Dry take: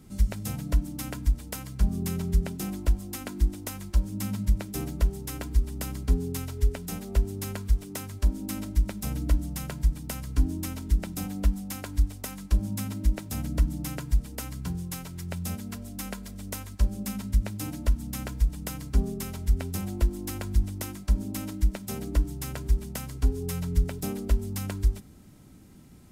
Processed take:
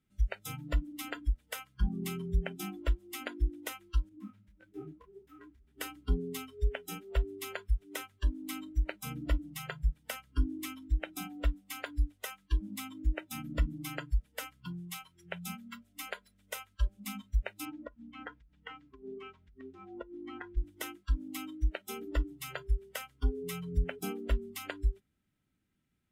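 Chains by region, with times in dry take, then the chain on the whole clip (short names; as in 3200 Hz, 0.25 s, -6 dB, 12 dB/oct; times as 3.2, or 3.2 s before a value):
4.09–5.78 high shelf 3700 Hz -8.5 dB + compressor 2.5:1, threshold -24 dBFS + detuned doubles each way 58 cents
17.65–20.57 compressor 16:1, threshold -28 dBFS + air absorption 150 m
whole clip: band shelf 2200 Hz +9.5 dB; spectral noise reduction 23 dB; dynamic EQ 580 Hz, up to +6 dB, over -51 dBFS, Q 1.3; gain -6 dB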